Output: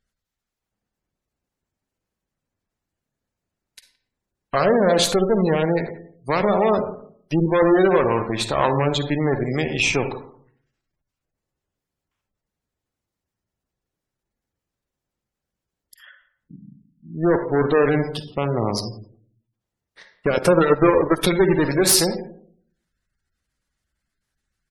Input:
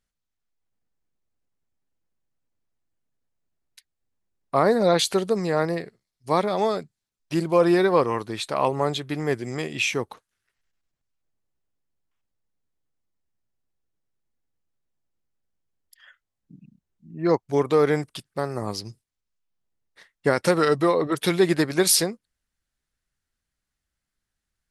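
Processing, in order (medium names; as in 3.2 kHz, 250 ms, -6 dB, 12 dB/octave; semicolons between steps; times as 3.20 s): speakerphone echo 170 ms, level -20 dB; in parallel at -2 dB: peak limiter -17.5 dBFS, peak gain reduction 11.5 dB; on the sum: Chebyshev shaper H 2 -7 dB, 8 -18 dB, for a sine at -4 dBFS; on a send at -7 dB: reverberation RT60 0.60 s, pre-delay 43 ms; 20.32–21.29 s: on the sum: transient shaper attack +7 dB, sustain -8 dB; spectral gate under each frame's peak -25 dB strong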